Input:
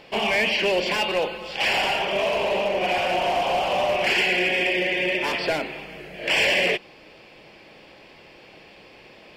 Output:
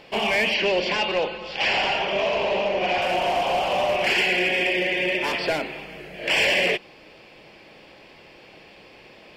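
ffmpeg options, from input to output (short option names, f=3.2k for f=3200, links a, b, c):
-filter_complex "[0:a]asettb=1/sr,asplit=3[a][b][c];[a]atrim=end=0.544[d];[b]atrim=start=0.54:end=3.02,asetpts=PTS-STARTPTS,afade=t=in:d=0.004:c=qsin,afade=t=out:st=2.476:d=0.004:c=qsin,lowpass=f=6.2k:w=0.5412,lowpass=f=6.2k:w=1.3066[e];[c]atrim=start=3.016[f];[d][e]acrossfade=d=0.004:c1=hsin:c2=qsin[g];[g][f]acrossfade=d=0.004:c1=qsin:c2=hsin"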